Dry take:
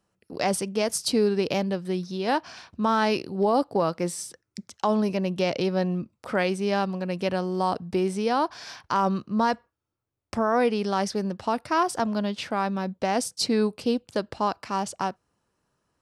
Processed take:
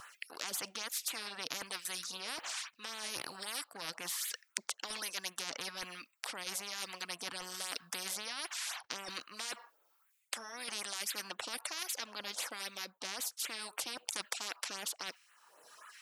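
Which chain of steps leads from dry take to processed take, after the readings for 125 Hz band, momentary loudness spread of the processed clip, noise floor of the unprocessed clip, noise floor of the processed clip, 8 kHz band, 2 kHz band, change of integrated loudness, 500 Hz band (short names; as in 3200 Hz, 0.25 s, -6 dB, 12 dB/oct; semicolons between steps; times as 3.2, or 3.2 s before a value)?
-30.0 dB, 6 LU, -78 dBFS, -73 dBFS, -2.0 dB, -8.0 dB, -13.5 dB, -26.0 dB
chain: LFO notch sine 3.8 Hz 540–5600 Hz; reverb removal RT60 0.85 s; LFO high-pass sine 1.2 Hz 550–2300 Hz; reverse; compressor 4:1, threshold -40 dBFS, peak gain reduction 20 dB; reverse; low shelf 390 Hz -6.5 dB; spectral compressor 10:1; gain +14.5 dB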